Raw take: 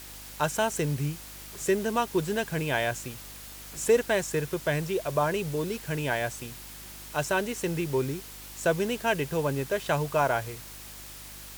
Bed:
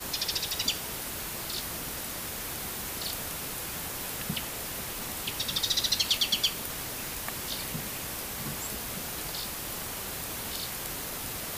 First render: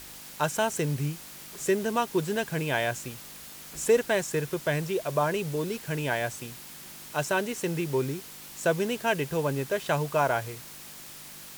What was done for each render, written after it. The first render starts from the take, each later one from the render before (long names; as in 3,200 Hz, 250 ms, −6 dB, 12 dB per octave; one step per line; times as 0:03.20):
hum removal 50 Hz, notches 2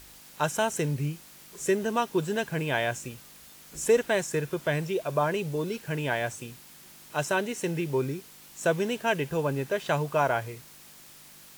noise reduction from a noise print 6 dB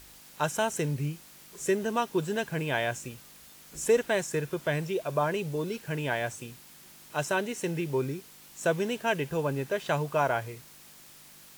level −1.5 dB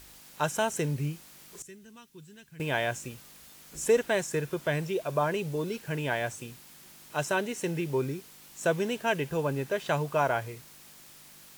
0:01.62–0:02.60: guitar amp tone stack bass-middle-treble 6-0-2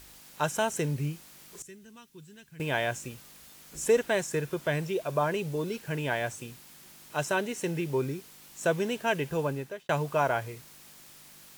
0:09.44–0:09.89: fade out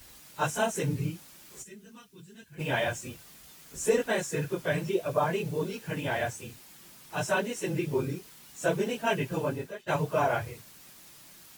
random phases in long frames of 50 ms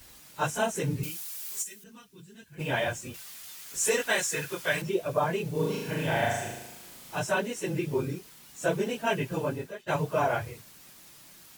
0:01.03–0:01.84: spectral tilt +4 dB per octave
0:03.14–0:04.82: tilt shelving filter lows −8 dB, about 710 Hz
0:05.51–0:07.19: flutter between parallel walls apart 6.5 metres, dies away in 0.99 s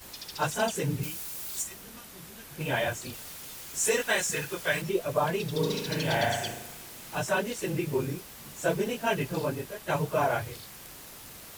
mix in bed −11.5 dB